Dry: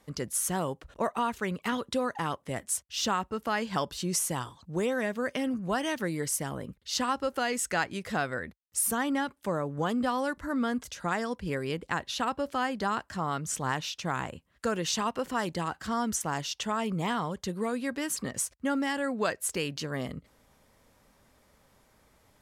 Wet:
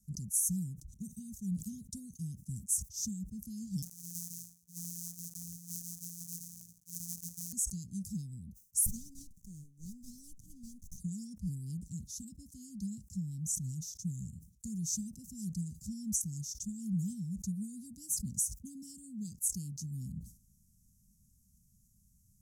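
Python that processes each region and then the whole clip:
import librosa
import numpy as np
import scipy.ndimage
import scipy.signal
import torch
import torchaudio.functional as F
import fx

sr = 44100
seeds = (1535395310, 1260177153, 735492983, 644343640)

y = fx.chain(x, sr, fx.sample_sort(block=256),
    fx.highpass(hz=1200.0, slope=6), at=(3.82, 7.53))
y = fx.chain(y, sr, fx.highpass(hz=550.0, slope=12),
    fx.running_max(window=9), at=(8.86, 10.98))
y = scipy.signal.sosfilt(scipy.signal.cheby1(4, 1.0, [200.0, 6100.0], 'bandstop', fs=sr, output='sos'), y)
y = fx.sustainer(y, sr, db_per_s=130.0)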